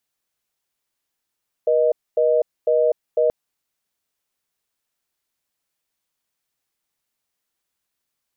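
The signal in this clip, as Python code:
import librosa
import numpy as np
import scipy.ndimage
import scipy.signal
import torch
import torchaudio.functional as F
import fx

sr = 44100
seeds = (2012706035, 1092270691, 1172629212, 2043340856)

y = fx.call_progress(sr, length_s=1.63, kind='reorder tone', level_db=-17.0)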